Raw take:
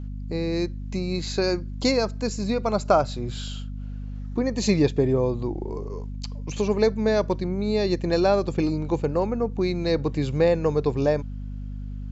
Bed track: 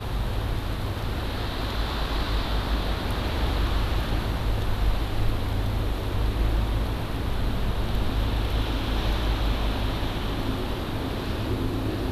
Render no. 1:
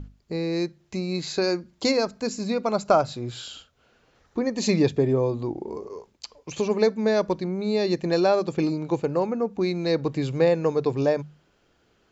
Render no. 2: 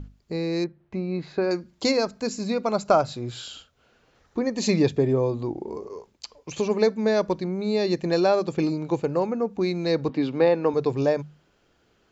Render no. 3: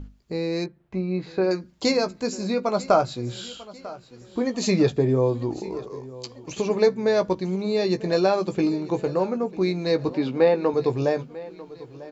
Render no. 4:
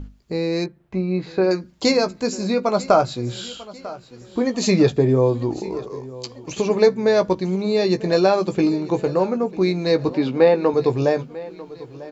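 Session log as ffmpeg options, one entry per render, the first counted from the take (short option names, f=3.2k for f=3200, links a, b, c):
-af "bandreject=f=50:t=h:w=6,bandreject=f=100:t=h:w=6,bandreject=f=150:t=h:w=6,bandreject=f=200:t=h:w=6,bandreject=f=250:t=h:w=6"
-filter_complex "[0:a]asettb=1/sr,asplit=3[a][b][c];[a]atrim=end=0.644[d];[b]atrim=start=0.64:end=1.51,asetpts=PTS-STARTPTS,afade=t=in:d=0.004:c=qsin,afade=t=out:st=0.866:d=0.004:c=qsin,lowpass=1.8k[e];[c]atrim=start=1.506[f];[d][e]acrossfade=d=0.004:c1=hsin:c2=qsin[g];[g][f]acrossfade=d=0.004:c1=qsin:c2=hsin,asettb=1/sr,asplit=3[h][i][j];[h]atrim=end=10.094[k];[i]atrim=start=10.09:end=10.74,asetpts=PTS-STARTPTS,afade=t=in:d=0.004:c=qsin,afade=t=out:st=0.646:d=0.004:c=qsin,highpass=210,equalizer=f=260:t=q:w=4:g=9,equalizer=f=880:t=q:w=4:g=5,equalizer=f=1.3k:t=q:w=4:g=3,lowpass=f=4.7k:w=0.5412,lowpass=f=4.7k:w=1.3066[l];[j]atrim=start=10.736[m];[k][l]acrossfade=d=0.004:c1=hsin:c2=qsin[n];[n][m]acrossfade=d=0.004:c1=qsin:c2=hsin"
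-filter_complex "[0:a]asplit=2[a][b];[b]adelay=16,volume=-8.5dB[c];[a][c]amix=inputs=2:normalize=0,aecho=1:1:945|1890|2835|3780:0.119|0.0582|0.0285|0.014"
-af "volume=4dB,alimiter=limit=-3dB:level=0:latency=1"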